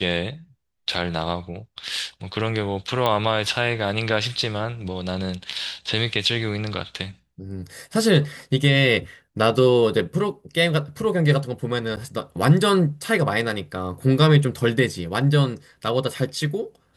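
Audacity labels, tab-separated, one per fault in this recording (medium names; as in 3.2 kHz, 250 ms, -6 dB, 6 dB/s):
3.060000	3.060000	pop -9 dBFS
11.960000	11.970000	dropout 9.1 ms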